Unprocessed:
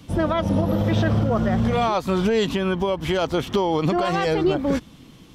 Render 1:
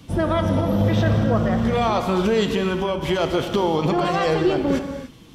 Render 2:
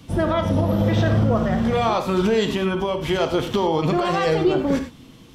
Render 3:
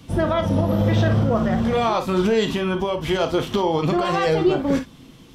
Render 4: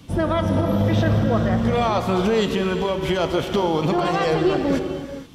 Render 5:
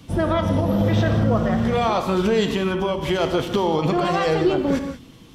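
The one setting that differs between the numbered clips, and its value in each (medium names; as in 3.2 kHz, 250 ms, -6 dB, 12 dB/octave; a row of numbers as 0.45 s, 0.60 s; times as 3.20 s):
gated-style reverb, gate: 320 ms, 130 ms, 80 ms, 500 ms, 210 ms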